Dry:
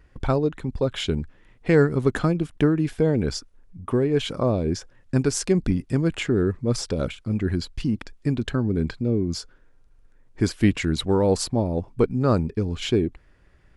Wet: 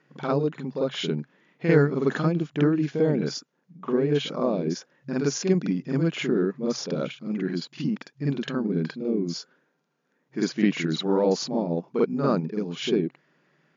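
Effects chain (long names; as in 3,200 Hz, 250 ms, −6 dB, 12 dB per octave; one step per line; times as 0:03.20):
brick-wall band-pass 130–7,100 Hz
backwards echo 48 ms −5.5 dB
level −2.5 dB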